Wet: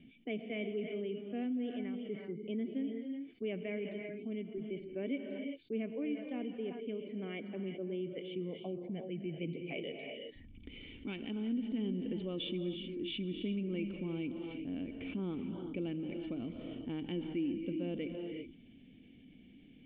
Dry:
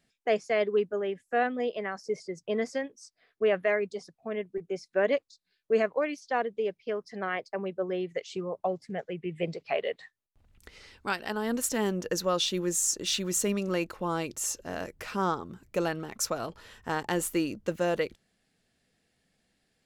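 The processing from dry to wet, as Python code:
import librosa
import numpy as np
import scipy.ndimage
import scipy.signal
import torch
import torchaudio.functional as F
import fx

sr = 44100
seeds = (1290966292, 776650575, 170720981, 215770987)

y = fx.formant_cascade(x, sr, vowel='i')
y = fx.rev_gated(y, sr, seeds[0], gate_ms=400, shape='rising', drr_db=7.5)
y = fx.env_flatten(y, sr, amount_pct=50)
y = F.gain(torch.from_numpy(y), -1.0).numpy()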